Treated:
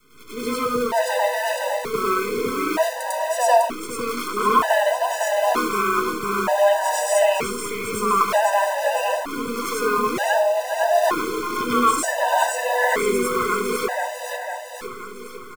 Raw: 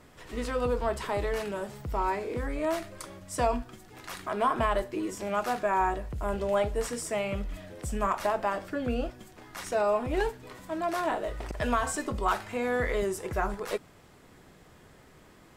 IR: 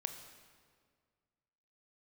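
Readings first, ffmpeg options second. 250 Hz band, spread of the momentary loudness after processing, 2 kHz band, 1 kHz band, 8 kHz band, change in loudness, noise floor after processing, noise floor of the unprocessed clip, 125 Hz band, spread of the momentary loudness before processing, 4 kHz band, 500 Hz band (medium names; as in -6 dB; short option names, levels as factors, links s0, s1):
+6.5 dB, 9 LU, +11.5 dB, +10.5 dB, +12.5 dB, +9.5 dB, -36 dBFS, -56 dBFS, -3.0 dB, 11 LU, +13.0 dB, +9.5 dB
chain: -filter_complex "[0:a]highpass=280,adynamicequalizer=threshold=0.00891:dfrequency=440:dqfactor=1.1:tfrequency=440:tqfactor=1.1:attack=5:release=100:ratio=0.375:range=3:mode=cutabove:tftype=bell,acrusher=bits=8:dc=4:mix=0:aa=0.000001,aecho=1:1:503|1006|1509|2012|2515|3018|3521|4024:0.562|0.332|0.196|0.115|0.0681|0.0402|0.0237|0.014,asplit=2[s0][s1];[1:a]atrim=start_sample=2205,afade=t=out:st=0.16:d=0.01,atrim=end_sample=7497,adelay=99[s2];[s1][s2]afir=irnorm=-1:irlink=0,volume=2.11[s3];[s0][s3]amix=inputs=2:normalize=0,afftfilt=real='re*gt(sin(2*PI*0.54*pts/sr)*(1-2*mod(floor(b*sr/1024/510),2)),0)':imag='im*gt(sin(2*PI*0.54*pts/sr)*(1-2*mod(floor(b*sr/1024/510),2)),0)':win_size=1024:overlap=0.75,volume=2.24"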